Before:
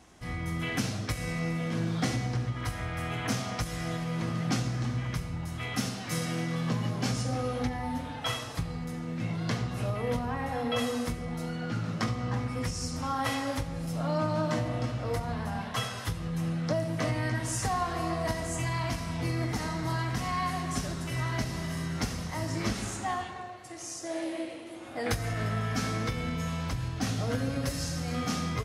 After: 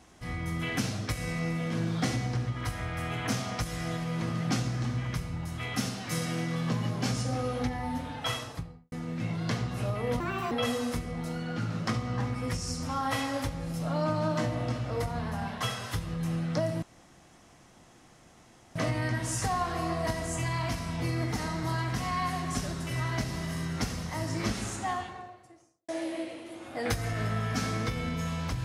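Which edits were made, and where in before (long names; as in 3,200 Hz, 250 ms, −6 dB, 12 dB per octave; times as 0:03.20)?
0:08.35–0:08.92: fade out and dull
0:10.20–0:10.65: play speed 143%
0:16.96: splice in room tone 1.93 s
0:23.11–0:24.09: fade out and dull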